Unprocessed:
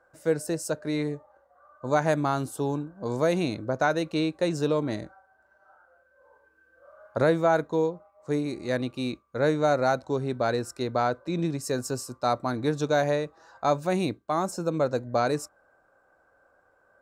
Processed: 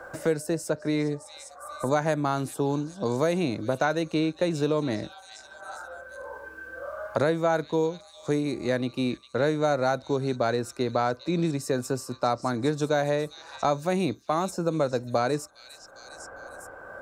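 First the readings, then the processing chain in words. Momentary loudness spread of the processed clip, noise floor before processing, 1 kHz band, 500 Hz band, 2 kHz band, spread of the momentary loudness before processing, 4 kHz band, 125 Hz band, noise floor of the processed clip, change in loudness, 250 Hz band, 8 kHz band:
17 LU, -65 dBFS, -0.5 dB, 0.0 dB, 0.0 dB, 9 LU, +1.0 dB, +0.5 dB, -51 dBFS, 0.0 dB, +1.0 dB, 0.0 dB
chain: repeats whose band climbs or falls 404 ms, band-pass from 4.1 kHz, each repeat 0.7 oct, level -10 dB; three bands compressed up and down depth 70%

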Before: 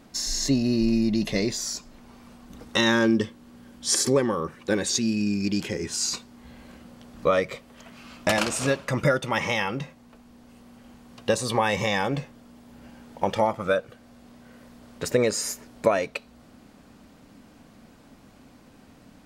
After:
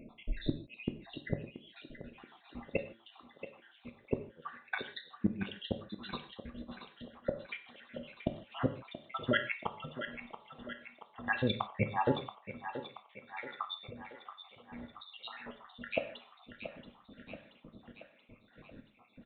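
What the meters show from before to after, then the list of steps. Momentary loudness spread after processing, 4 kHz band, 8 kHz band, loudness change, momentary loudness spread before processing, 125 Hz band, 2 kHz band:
21 LU, -14.5 dB, under -40 dB, -14.5 dB, 11 LU, -10.0 dB, -10.5 dB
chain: random holes in the spectrogram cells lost 80%; inverted gate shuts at -18 dBFS, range -35 dB; on a send: thinning echo 679 ms, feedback 60%, high-pass 280 Hz, level -10 dB; on the sum: gated-style reverb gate 180 ms falling, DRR 6.5 dB; resampled via 8 kHz; trim +1 dB

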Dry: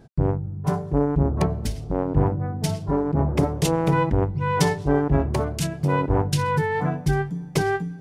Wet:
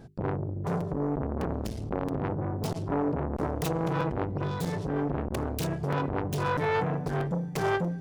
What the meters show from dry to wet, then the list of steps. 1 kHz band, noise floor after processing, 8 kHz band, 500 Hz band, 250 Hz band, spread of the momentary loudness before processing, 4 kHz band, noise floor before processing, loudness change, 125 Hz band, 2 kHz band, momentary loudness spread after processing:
-6.0 dB, -36 dBFS, -11.0 dB, -6.0 dB, -6.5 dB, 6 LU, -8.5 dB, -36 dBFS, -7.0 dB, -8.5 dB, -6.0 dB, 4 LU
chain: self-modulated delay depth 0.25 ms; bass shelf 210 Hz +5.5 dB; peak limiter -16.5 dBFS, peak gain reduction 13 dB; bass shelf 63 Hz -7 dB; time-frequency box 4.44–4.73 s, 250–3300 Hz -9 dB; hum notches 50/100/150/200/250/300/350/400 Hz; crackling interface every 0.64 s, samples 256, repeat, from 0.80 s; transformer saturation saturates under 710 Hz; trim +1 dB

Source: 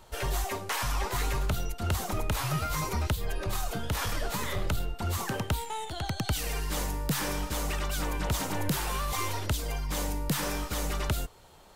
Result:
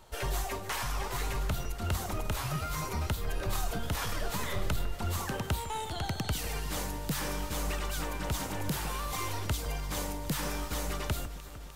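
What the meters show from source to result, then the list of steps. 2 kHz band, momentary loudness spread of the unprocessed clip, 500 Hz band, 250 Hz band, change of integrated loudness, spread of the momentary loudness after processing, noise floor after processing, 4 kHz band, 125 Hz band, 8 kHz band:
-2.5 dB, 3 LU, -2.5 dB, -3.0 dB, -3.0 dB, 2 LU, -41 dBFS, -2.5 dB, -2.5 dB, -3.0 dB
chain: gain riding 0.5 s; on a send: echo whose repeats swap between lows and highs 151 ms, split 2.1 kHz, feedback 83%, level -13 dB; on the sum: trim -3 dB

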